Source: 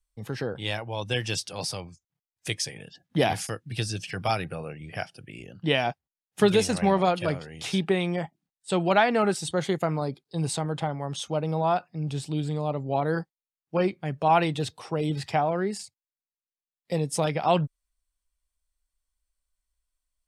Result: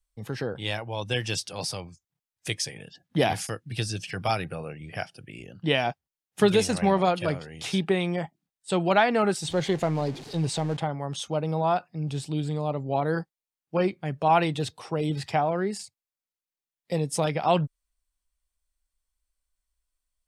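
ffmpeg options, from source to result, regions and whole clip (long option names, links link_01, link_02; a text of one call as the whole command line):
ffmpeg -i in.wav -filter_complex "[0:a]asettb=1/sr,asplit=3[link_01][link_02][link_03];[link_01]atrim=end=9.444[link_04];[link_02]atrim=start=9.44:end=10.77,asetpts=PTS-STARTPTS,afade=type=in:duration=0.004:curve=qsin,afade=type=out:start_time=1.326:duration=0.004:curve=qsin,aeval=exprs='val(0)+0.5*0.0188*sgn(val(0))':channel_layout=same,lowpass=6900,equalizer=frequency=1300:width=3.8:gain=-6[link_05];[link_03]atrim=start=10.766[link_06];[link_04][link_05]acrossfade=duration=0.004:curve1=hsin:curve2=qsin[link_07];[link_07][link_06]acrossfade=duration=0.004:curve1=qsin:curve2=hsin" out.wav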